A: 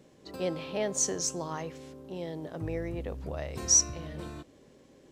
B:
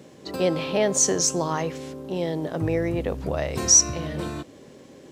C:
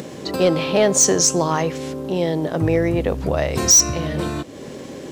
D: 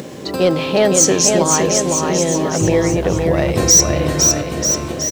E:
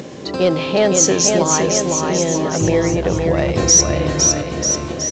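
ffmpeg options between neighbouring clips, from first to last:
-filter_complex "[0:a]highpass=84,asplit=2[s0][s1];[s1]alimiter=level_in=1.06:limit=0.0631:level=0:latency=1:release=91,volume=0.944,volume=1.06[s2];[s0][s2]amix=inputs=2:normalize=0,volume=1.68"
-filter_complex "[0:a]asplit=2[s0][s1];[s1]acompressor=mode=upward:threshold=0.0501:ratio=2.5,volume=1.41[s2];[s0][s2]amix=inputs=2:normalize=0,asoftclip=type=hard:threshold=0.473,volume=0.841"
-af "aecho=1:1:510|943.5|1312|1625|1891:0.631|0.398|0.251|0.158|0.1,acrusher=bits=8:mix=0:aa=0.000001,volume=1.26"
-af "volume=0.891" -ar 16000 -c:a pcm_alaw

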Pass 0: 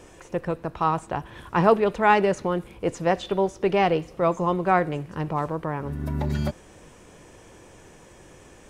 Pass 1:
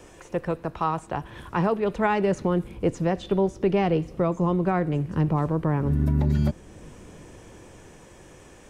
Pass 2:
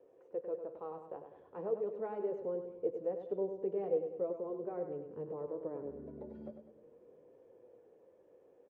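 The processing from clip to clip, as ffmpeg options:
-filter_complex "[0:a]acrossover=split=350|970|3600[s0][s1][s2][s3];[s0]dynaudnorm=f=390:g=11:m=3.16[s4];[s4][s1][s2][s3]amix=inputs=4:normalize=0,alimiter=limit=0.237:level=0:latency=1:release=470"
-af "flanger=delay=7.3:depth=3.7:regen=-44:speed=0.41:shape=triangular,bandpass=f=480:t=q:w=5.4:csg=0,aecho=1:1:100|200|300|400|500:0.398|0.187|0.0879|0.0413|0.0194,volume=0.794"

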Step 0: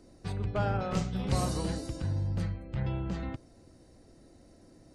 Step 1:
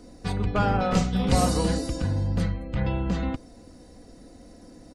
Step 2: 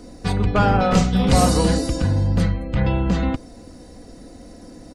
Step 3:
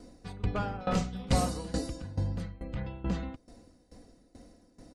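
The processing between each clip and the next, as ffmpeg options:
-af "aecho=1:1:4.1:0.46,volume=2.51"
-af "aeval=exprs='0.501*sin(PI/2*1.41*val(0)/0.501)':c=same"
-af "aeval=exprs='val(0)*pow(10,-18*if(lt(mod(2.3*n/s,1),2*abs(2.3)/1000),1-mod(2.3*n/s,1)/(2*abs(2.3)/1000),(mod(2.3*n/s,1)-2*abs(2.3)/1000)/(1-2*abs(2.3)/1000))/20)':c=same,volume=0.376"

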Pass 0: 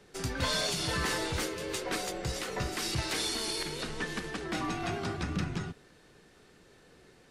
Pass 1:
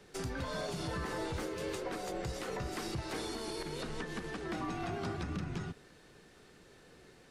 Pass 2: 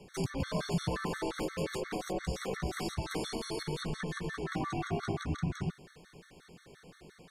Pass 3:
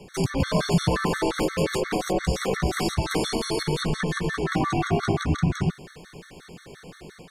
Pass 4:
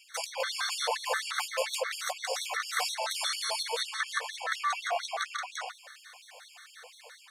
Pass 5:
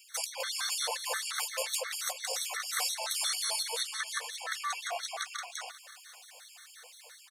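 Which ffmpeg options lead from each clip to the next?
-filter_complex "[0:a]acrossover=split=1400[s0][s1];[s1]acompressor=threshold=0.00631:ratio=6[s2];[s0][s2]amix=inputs=2:normalize=0,alimiter=level_in=1.68:limit=0.0631:level=0:latency=1:release=199,volume=0.596"
-af "aeval=exprs='0.0398*(cos(1*acos(clip(val(0)/0.0398,-1,1)))-cos(1*PI/2))+0.00158*(cos(4*acos(clip(val(0)/0.0398,-1,1)))-cos(4*PI/2))':c=same,equalizer=f=170:t=o:w=0.35:g=8.5,afftfilt=real='re*gt(sin(2*PI*5.7*pts/sr)*(1-2*mod(floor(b*sr/1024/1100),2)),0)':imag='im*gt(sin(2*PI*5.7*pts/sr)*(1-2*mod(floor(b*sr/1024/1100),2)),0)':win_size=1024:overlap=0.75,volume=1.78"
-af "dynaudnorm=f=160:g=3:m=1.41,volume=2.51"
-af "afftfilt=real='re*gte(b*sr/1024,440*pow(2800/440,0.5+0.5*sin(2*PI*4.2*pts/sr)))':imag='im*gte(b*sr/1024,440*pow(2800/440,0.5+0.5*sin(2*PI*4.2*pts/sr)))':win_size=1024:overlap=0.75"
-af "crystalizer=i=2.5:c=0,aecho=1:1:538:0.126,volume=0.473"

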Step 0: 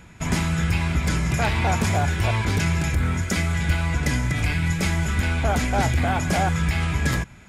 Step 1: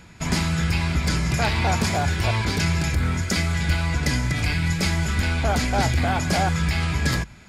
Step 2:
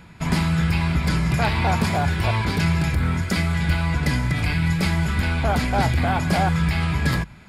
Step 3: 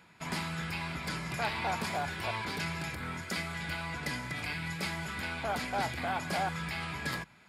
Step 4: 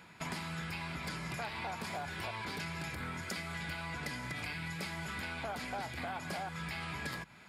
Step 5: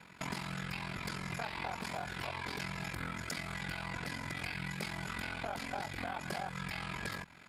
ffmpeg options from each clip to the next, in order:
-af "equalizer=f=4600:w=2.9:g=8.5,bandreject=f=50:t=h:w=6,bandreject=f=100:t=h:w=6"
-af "equalizer=f=160:t=o:w=0.67:g=4,equalizer=f=1000:t=o:w=0.67:g=3,equalizer=f=6300:t=o:w=0.67:g=-9"
-af "highpass=f=470:p=1,volume=0.376"
-af "acompressor=threshold=0.00891:ratio=6,volume=1.5"
-af "aeval=exprs='val(0)*sin(2*PI*22*n/s)':c=same,volume=1.41"

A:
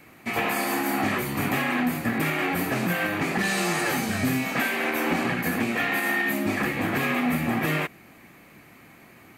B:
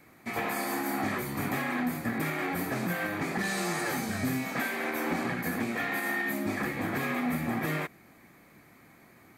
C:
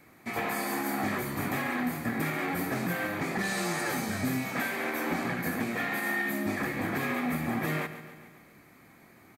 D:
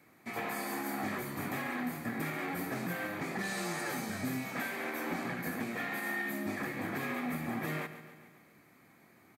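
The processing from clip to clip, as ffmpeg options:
-af "equalizer=f=2800:t=o:w=0.27:g=-10,volume=0.531"
-af "aecho=1:1:140|280|420|560|700|840:0.224|0.128|0.0727|0.0415|0.0236|0.0135"
-af "highpass=95,volume=0.531"

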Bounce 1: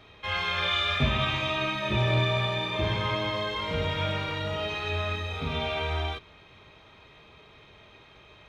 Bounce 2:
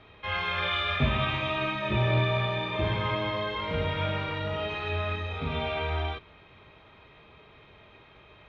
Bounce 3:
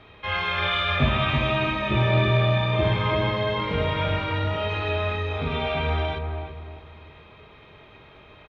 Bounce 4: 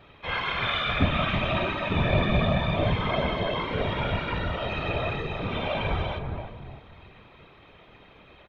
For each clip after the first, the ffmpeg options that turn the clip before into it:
-af "lowpass=3100"
-filter_complex "[0:a]asplit=2[s0][s1];[s1]adelay=333,lowpass=f=870:p=1,volume=0.631,asplit=2[s2][s3];[s3]adelay=333,lowpass=f=870:p=1,volume=0.39,asplit=2[s4][s5];[s5]adelay=333,lowpass=f=870:p=1,volume=0.39,asplit=2[s6][s7];[s7]adelay=333,lowpass=f=870:p=1,volume=0.39,asplit=2[s8][s9];[s9]adelay=333,lowpass=f=870:p=1,volume=0.39[s10];[s0][s2][s4][s6][s8][s10]amix=inputs=6:normalize=0,volume=1.58"
-af "afftfilt=real='hypot(re,im)*cos(2*PI*random(0))':imag='hypot(re,im)*sin(2*PI*random(1))':win_size=512:overlap=0.75,volume=1.41"

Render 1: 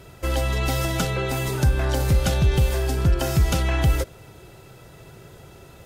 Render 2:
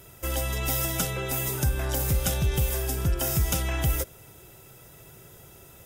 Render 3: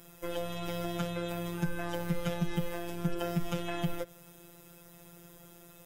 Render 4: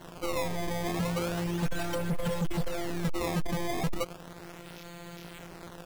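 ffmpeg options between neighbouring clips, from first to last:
-af "aemphasis=mode=production:type=50fm,bandreject=f=4300:w=6.2,volume=0.501"
-filter_complex "[0:a]afftfilt=real='hypot(re,im)*cos(PI*b)':imag='0':win_size=1024:overlap=0.75,acrossover=split=3300[s0][s1];[s1]acompressor=threshold=0.00447:ratio=4:attack=1:release=60[s2];[s0][s2]amix=inputs=2:normalize=0"
-af "acrusher=samples=18:mix=1:aa=0.000001:lfo=1:lforange=28.8:lforate=0.35,volume=50.1,asoftclip=hard,volume=0.02,volume=2.66"

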